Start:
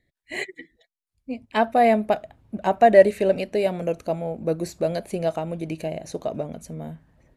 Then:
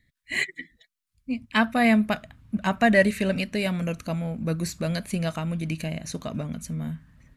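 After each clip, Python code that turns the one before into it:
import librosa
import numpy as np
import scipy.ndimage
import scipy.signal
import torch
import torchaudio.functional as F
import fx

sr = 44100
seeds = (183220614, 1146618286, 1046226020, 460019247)

y = fx.band_shelf(x, sr, hz=530.0, db=-13.5, octaves=1.7)
y = F.gain(torch.from_numpy(y), 5.0).numpy()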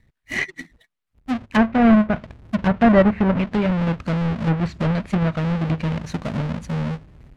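y = fx.halfwave_hold(x, sr)
y = fx.bass_treble(y, sr, bass_db=4, treble_db=-9)
y = fx.env_lowpass_down(y, sr, base_hz=1700.0, full_db=-14.0)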